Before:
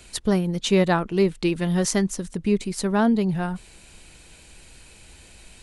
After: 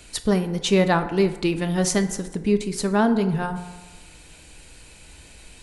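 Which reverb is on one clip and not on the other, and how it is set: FDN reverb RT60 1.2 s, low-frequency decay 0.8×, high-frequency decay 0.45×, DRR 8 dB; trim +1 dB

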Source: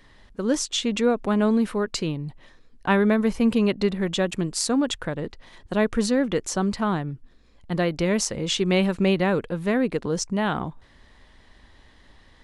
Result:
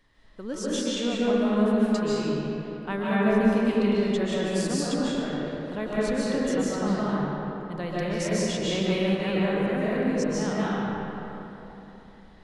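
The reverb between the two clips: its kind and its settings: algorithmic reverb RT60 3.4 s, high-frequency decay 0.55×, pre-delay 105 ms, DRR -8.5 dB; trim -11.5 dB

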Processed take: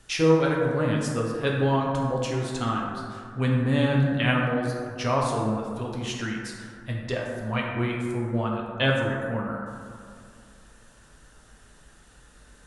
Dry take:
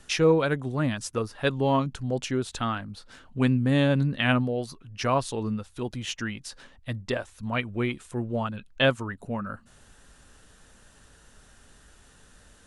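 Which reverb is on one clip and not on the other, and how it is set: plate-style reverb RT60 2.2 s, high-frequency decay 0.35×, DRR -2 dB; trim -2.5 dB

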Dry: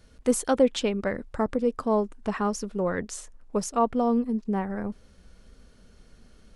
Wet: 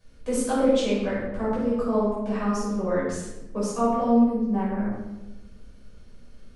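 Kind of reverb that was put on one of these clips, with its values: simulated room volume 450 m³, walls mixed, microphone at 5.6 m; trim -12 dB

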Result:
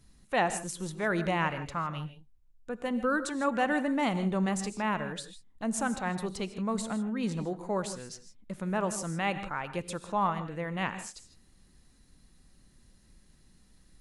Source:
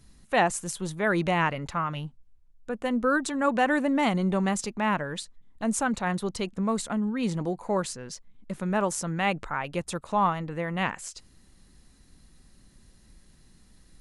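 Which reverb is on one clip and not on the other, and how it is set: gated-style reverb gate 180 ms rising, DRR 11 dB; trim -4.5 dB

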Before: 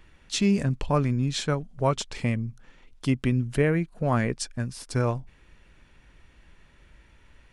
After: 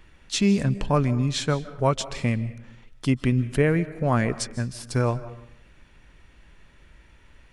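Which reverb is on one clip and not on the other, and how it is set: algorithmic reverb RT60 0.76 s, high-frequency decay 0.7×, pre-delay 115 ms, DRR 15.5 dB; trim +2 dB

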